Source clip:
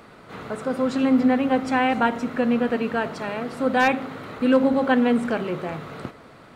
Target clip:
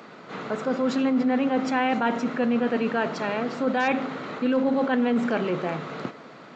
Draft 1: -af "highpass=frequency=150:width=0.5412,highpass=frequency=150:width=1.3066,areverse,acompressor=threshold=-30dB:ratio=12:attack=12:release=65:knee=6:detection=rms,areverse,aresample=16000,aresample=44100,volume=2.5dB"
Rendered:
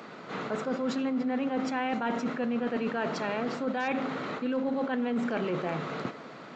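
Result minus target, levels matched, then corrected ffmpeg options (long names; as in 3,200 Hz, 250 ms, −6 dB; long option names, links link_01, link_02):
downward compressor: peak gain reduction +7.5 dB
-af "highpass=frequency=150:width=0.5412,highpass=frequency=150:width=1.3066,areverse,acompressor=threshold=-22dB:ratio=12:attack=12:release=65:knee=6:detection=rms,areverse,aresample=16000,aresample=44100,volume=2.5dB"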